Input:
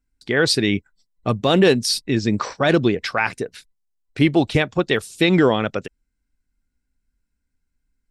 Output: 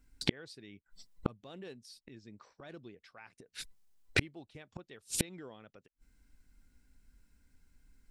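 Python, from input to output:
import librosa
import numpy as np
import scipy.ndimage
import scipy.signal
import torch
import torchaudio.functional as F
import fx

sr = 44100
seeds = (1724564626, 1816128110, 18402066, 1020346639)

y = fx.gate_flip(x, sr, shuts_db=-23.0, range_db=-42)
y = y * librosa.db_to_amplitude(9.0)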